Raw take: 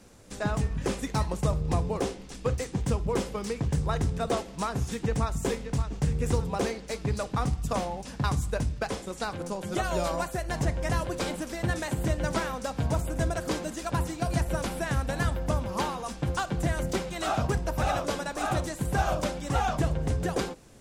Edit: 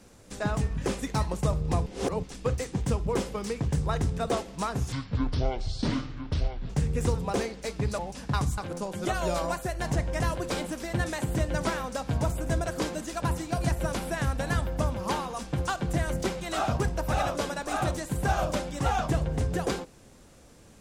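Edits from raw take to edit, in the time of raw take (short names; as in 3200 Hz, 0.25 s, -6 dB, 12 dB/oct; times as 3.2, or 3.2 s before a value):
1.86–2.23 reverse
4.92–5.95 speed 58%
7.24–7.89 cut
8.48–9.27 cut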